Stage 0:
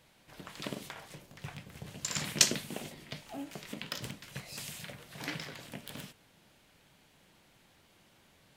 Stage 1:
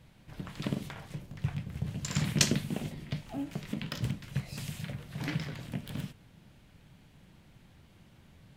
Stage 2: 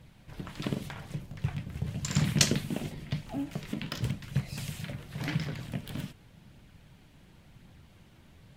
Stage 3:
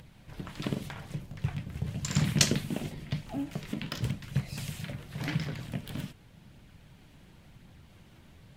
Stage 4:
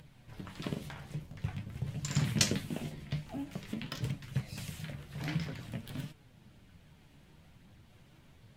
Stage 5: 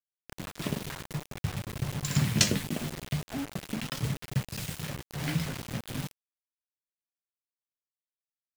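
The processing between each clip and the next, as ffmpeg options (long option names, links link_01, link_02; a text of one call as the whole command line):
ffmpeg -i in.wav -af "bass=frequency=250:gain=14,treble=frequency=4000:gain=-4" out.wav
ffmpeg -i in.wav -af "aphaser=in_gain=1:out_gain=1:delay=3.5:decay=0.24:speed=0.91:type=triangular,volume=1.5dB" out.wav
ffmpeg -i in.wav -af "acompressor=mode=upward:threshold=-50dB:ratio=2.5" out.wav
ffmpeg -i in.wav -af "flanger=delay=6.4:depth=8.2:regen=51:speed=0.49:shape=triangular" out.wav
ffmpeg -i in.wav -af "acrusher=bits=6:mix=0:aa=0.000001,volume=4.5dB" out.wav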